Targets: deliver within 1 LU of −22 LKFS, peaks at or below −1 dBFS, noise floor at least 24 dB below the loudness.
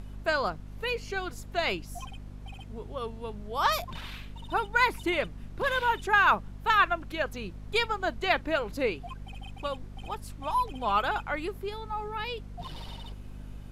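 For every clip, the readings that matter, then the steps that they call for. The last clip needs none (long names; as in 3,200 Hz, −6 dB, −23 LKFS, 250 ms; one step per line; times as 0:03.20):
mains hum 50 Hz; hum harmonics up to 250 Hz; level of the hum −40 dBFS; background noise floor −44 dBFS; target noise floor −54 dBFS; integrated loudness −29.5 LKFS; sample peak −11.0 dBFS; target loudness −22.0 LKFS
→ hum removal 50 Hz, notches 5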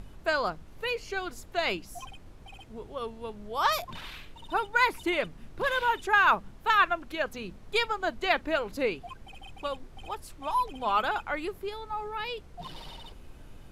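mains hum none found; background noise floor −50 dBFS; target noise floor −53 dBFS
→ noise reduction from a noise print 6 dB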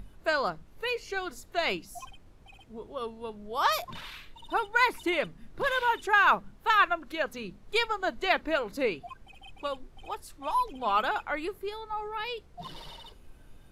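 background noise floor −54 dBFS; integrated loudness −29.0 LKFS; sample peak −11.0 dBFS; target loudness −22.0 LKFS
→ level +7 dB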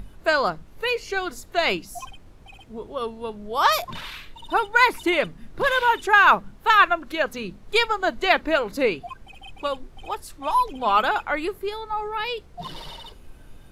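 integrated loudness −22.0 LKFS; sample peak −4.0 dBFS; background noise floor −47 dBFS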